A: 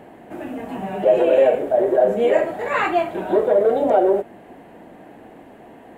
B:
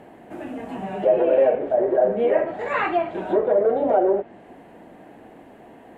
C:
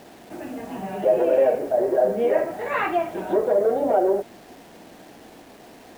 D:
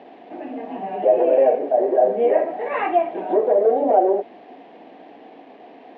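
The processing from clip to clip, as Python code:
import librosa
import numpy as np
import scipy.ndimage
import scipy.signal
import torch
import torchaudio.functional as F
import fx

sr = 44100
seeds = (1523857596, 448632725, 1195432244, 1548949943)

y1 = fx.env_lowpass_down(x, sr, base_hz=2000.0, full_db=-13.5)
y1 = y1 * 10.0 ** (-2.5 / 20.0)
y2 = fx.quant_dither(y1, sr, seeds[0], bits=8, dither='none')
y2 = y2 * 10.0 ** (-1.0 / 20.0)
y3 = fx.cabinet(y2, sr, low_hz=270.0, low_slope=12, high_hz=3100.0, hz=(270.0, 450.0, 740.0, 1400.0), db=(6, 4, 7, -8))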